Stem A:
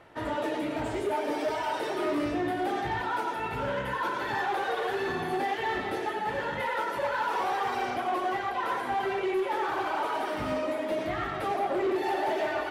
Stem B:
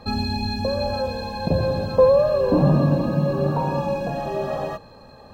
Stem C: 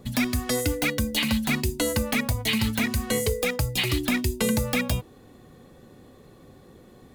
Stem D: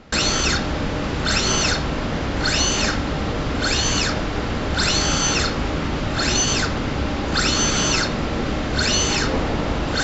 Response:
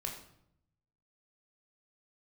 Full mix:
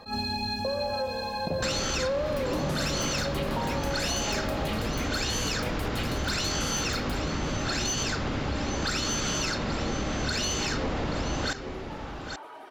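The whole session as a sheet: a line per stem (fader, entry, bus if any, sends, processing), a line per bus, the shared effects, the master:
−14.5 dB, 2.40 s, no send, no echo send, no processing
+0.5 dB, 0.00 s, no send, no echo send, low-shelf EQ 340 Hz −10.5 dB; level that may rise only so fast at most 200 dB per second
−8.5 dB, 2.20 s, no send, echo send −23 dB, no processing
−2.0 dB, 1.50 s, no send, echo send −14 dB, no processing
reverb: not used
echo: single-tap delay 829 ms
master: soft clipping −13 dBFS, distortion −20 dB; downward compressor, threshold −26 dBFS, peak gain reduction 9 dB

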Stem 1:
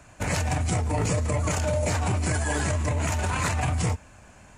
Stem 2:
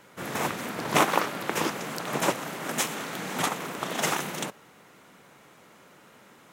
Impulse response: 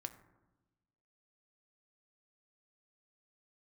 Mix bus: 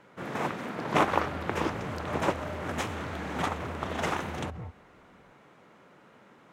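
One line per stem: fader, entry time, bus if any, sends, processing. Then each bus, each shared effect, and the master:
−15.0 dB, 0.75 s, no send, low-pass filter 1,500 Hz 12 dB per octave
−1.0 dB, 0.00 s, no send, high-shelf EQ 3,400 Hz −11 dB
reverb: not used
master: high-shelf EQ 9,200 Hz −11 dB

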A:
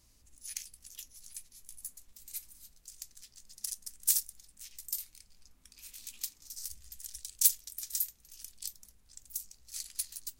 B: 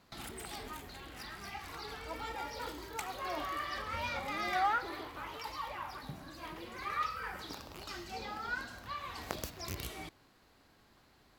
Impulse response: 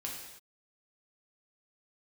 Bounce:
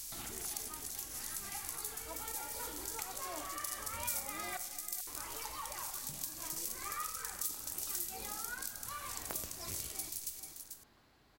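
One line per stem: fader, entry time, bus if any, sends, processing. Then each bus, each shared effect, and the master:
−6.0 dB, 0.00 s, send −10 dB, echo send −12 dB, compressor on every frequency bin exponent 0.4
−2.0 dB, 0.00 s, muted 0:04.57–0:05.07, send −8 dB, echo send −12 dB, no processing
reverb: on, pre-delay 3 ms
echo: single-tap delay 439 ms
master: shaped tremolo triangle 0.78 Hz, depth 30%; downward compressor 2 to 1, threshold −42 dBFS, peak gain reduction 11 dB

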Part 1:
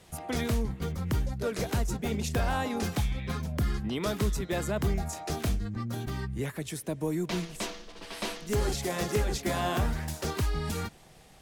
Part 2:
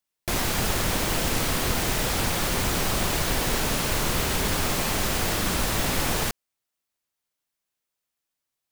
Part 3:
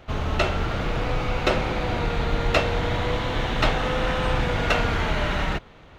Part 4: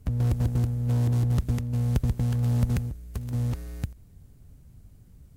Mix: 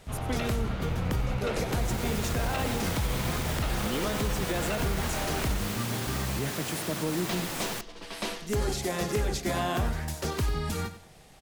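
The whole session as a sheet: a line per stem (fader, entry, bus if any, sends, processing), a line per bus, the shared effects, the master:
+1.0 dB, 0.00 s, no send, echo send −13 dB, no processing
−17.5 dB, 1.50 s, no send, no echo send, high-pass filter 110 Hz 24 dB per octave; automatic gain control gain up to 9 dB
−10.0 dB, 0.00 s, no send, no echo send, no processing
−13.5 dB, 0.00 s, no send, no echo send, no processing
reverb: not used
echo: repeating echo 92 ms, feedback 29%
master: brickwall limiter −19.5 dBFS, peak gain reduction 8.5 dB

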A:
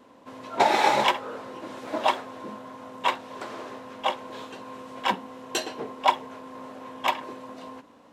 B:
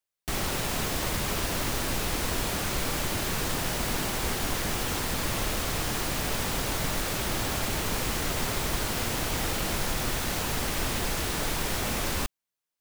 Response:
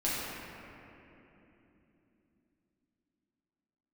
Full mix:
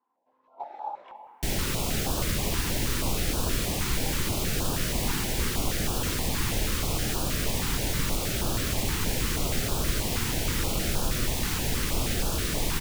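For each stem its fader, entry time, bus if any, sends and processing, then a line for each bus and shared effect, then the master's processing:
−13.5 dB, 0.00 s, send −12.5 dB, resonant band-pass 810 Hz, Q 4.2
+1.0 dB, 1.15 s, no send, low-shelf EQ 170 Hz +3.5 dB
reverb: on, RT60 3.3 s, pre-delay 6 ms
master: notch on a step sequencer 6.3 Hz 600–2,000 Hz

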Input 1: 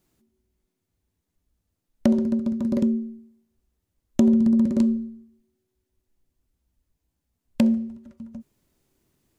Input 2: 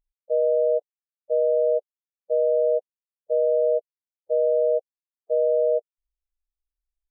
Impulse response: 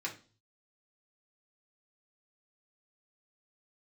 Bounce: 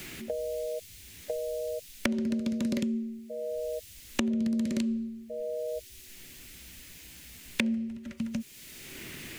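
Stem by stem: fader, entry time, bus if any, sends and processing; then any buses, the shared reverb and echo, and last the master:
−4.0 dB, 0.00 s, no send, high shelf with overshoot 1,500 Hz +14 dB, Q 1.5; downward compressor, threshold −19 dBFS, peak gain reduction 6.5 dB
−19.0 dB, 0.00 s, no send, brickwall limiter −23.5 dBFS, peak gain reduction 9.5 dB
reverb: not used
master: multiband upward and downward compressor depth 100%

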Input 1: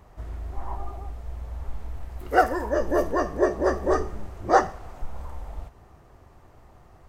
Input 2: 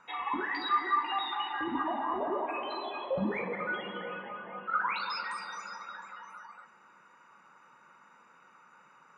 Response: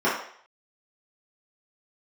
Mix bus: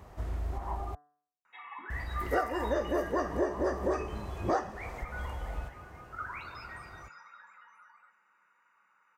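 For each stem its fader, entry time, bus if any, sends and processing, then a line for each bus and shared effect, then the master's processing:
+2.0 dB, 0.00 s, muted 0:00.95–0:01.90, no send, downward compressor 10 to 1, threshold −28 dBFS, peak gain reduction 16.5 dB
−5.5 dB, 1.45 s, no send, drawn EQ curve 300 Hz 0 dB, 2,000 Hz +10 dB, 4,100 Hz −6 dB; first-order pre-emphasis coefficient 0.8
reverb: not used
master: high-pass filter 44 Hz; hum removal 146.7 Hz, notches 13

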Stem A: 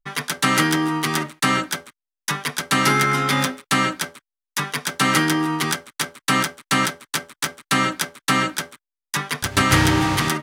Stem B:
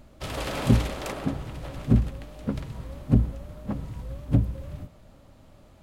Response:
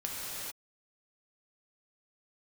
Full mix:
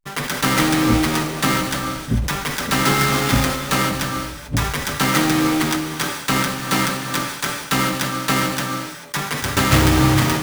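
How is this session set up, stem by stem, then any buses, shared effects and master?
−8.0 dB, 0.00 s, send −4.5 dB, each half-wave held at its own peak
−1.5 dB, 0.20 s, no send, no processing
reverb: on, pre-delay 3 ms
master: level that may fall only so fast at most 57 dB per second

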